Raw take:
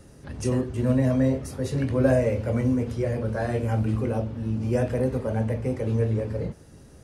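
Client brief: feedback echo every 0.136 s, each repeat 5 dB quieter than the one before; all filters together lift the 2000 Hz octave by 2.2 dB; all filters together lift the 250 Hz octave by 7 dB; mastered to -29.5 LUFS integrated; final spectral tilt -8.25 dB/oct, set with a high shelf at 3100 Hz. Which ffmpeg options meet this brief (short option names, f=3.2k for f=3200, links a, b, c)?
-af "equalizer=f=250:t=o:g=7.5,equalizer=f=2k:t=o:g=4.5,highshelf=f=3.1k:g=-6,aecho=1:1:136|272|408|544|680|816|952:0.562|0.315|0.176|0.0988|0.0553|0.031|0.0173,volume=-9.5dB"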